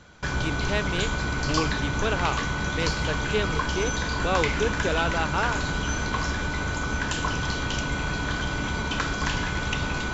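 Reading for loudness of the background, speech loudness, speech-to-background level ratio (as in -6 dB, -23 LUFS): -27.5 LUFS, -30.5 LUFS, -3.0 dB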